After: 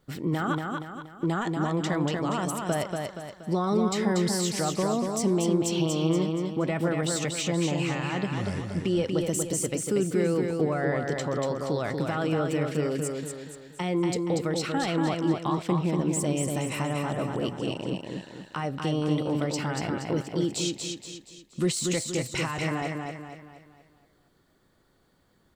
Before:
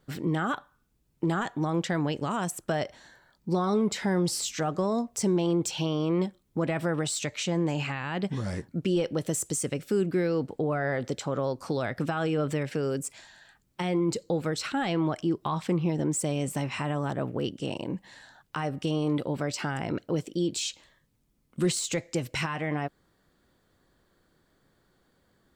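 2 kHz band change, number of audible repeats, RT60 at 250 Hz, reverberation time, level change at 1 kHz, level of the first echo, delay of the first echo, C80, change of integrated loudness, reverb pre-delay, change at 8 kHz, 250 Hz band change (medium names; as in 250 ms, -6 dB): +1.0 dB, 5, no reverb, no reverb, +1.5 dB, -4.0 dB, 237 ms, no reverb, +1.5 dB, no reverb, +1.5 dB, +2.0 dB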